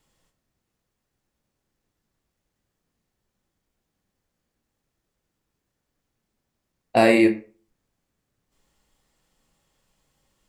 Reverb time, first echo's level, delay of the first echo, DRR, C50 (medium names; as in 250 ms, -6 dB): 0.40 s, no echo, no echo, 6.0 dB, 12.5 dB